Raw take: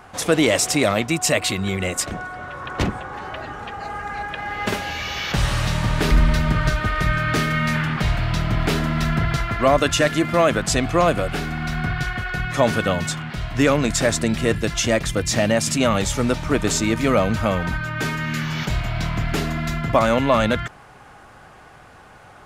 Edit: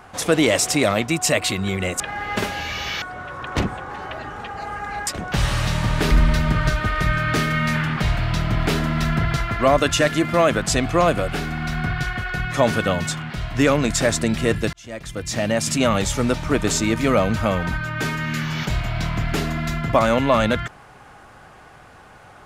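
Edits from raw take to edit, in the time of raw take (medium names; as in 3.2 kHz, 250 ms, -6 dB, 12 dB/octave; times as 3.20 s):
2.00–2.25 s: swap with 4.30–5.32 s
14.73–15.76 s: fade in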